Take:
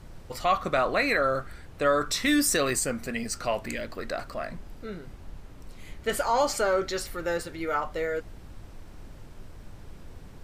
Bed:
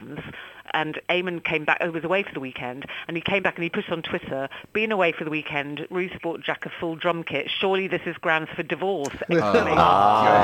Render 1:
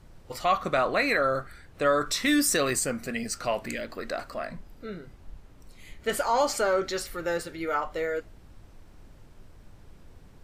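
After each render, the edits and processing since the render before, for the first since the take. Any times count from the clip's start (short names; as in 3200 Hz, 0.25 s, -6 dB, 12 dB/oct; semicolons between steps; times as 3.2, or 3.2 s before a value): noise print and reduce 6 dB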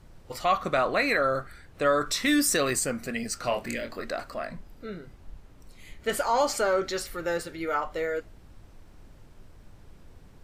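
3.41–4.05 doubler 25 ms -6.5 dB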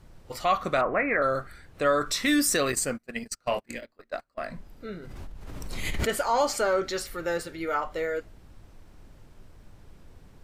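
0.81–1.22 steep low-pass 2300 Hz 48 dB/oct; 2.72–4.38 gate -32 dBFS, range -32 dB; 4.9–6.13 backwards sustainer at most 24 dB/s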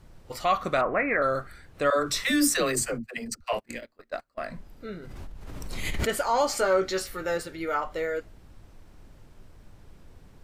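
1.9–3.53 dispersion lows, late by 92 ms, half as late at 330 Hz; 6.5–7.35 doubler 16 ms -7 dB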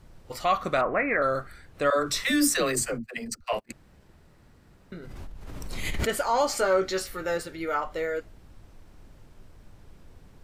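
3.72–4.92 room tone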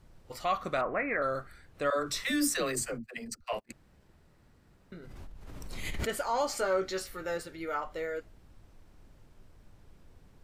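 gain -6 dB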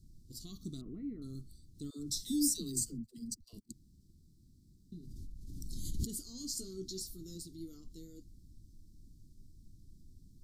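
inverse Chebyshev band-stop 530–2600 Hz, stop band 40 dB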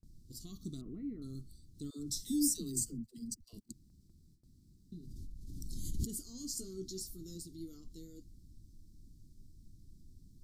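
gate with hold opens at -55 dBFS; dynamic EQ 4000 Hz, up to -6 dB, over -59 dBFS, Q 2.2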